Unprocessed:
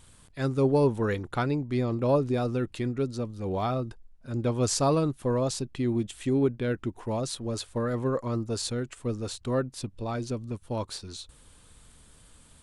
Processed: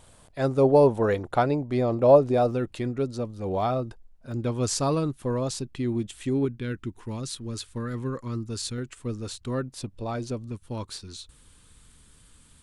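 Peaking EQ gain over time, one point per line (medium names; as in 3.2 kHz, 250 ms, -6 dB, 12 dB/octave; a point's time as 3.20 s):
peaking EQ 650 Hz 1 oct
+11.5 dB
from 2.51 s +5 dB
from 4.32 s -2.5 dB
from 6.45 s -14 dB
from 8.78 s -6 dB
from 9.68 s +2 dB
from 10.48 s -7 dB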